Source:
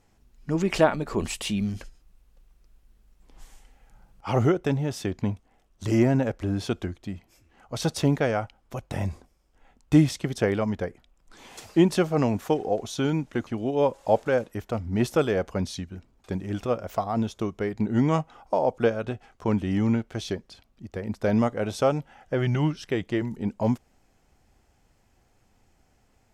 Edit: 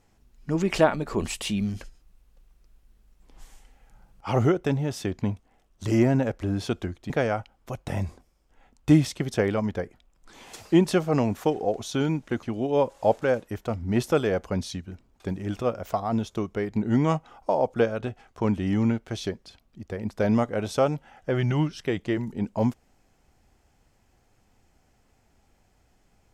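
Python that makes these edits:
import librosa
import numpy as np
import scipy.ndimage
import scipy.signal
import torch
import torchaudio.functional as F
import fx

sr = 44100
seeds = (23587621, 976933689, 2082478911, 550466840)

y = fx.edit(x, sr, fx.cut(start_s=7.1, length_s=1.04), tone=tone)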